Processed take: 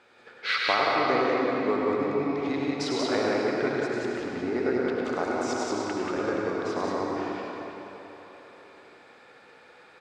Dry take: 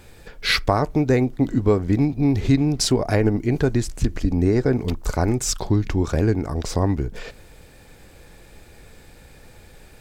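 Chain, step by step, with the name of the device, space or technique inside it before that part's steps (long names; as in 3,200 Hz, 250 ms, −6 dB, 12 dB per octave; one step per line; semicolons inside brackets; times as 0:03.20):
station announcement (band-pass filter 390–3,700 Hz; parametric band 1,300 Hz +7.5 dB 0.4 octaves; loudspeakers that aren't time-aligned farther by 35 metres −6 dB, 63 metres −2 dB; convolution reverb RT60 3.9 s, pre-delay 65 ms, DRR −1 dB)
level −7 dB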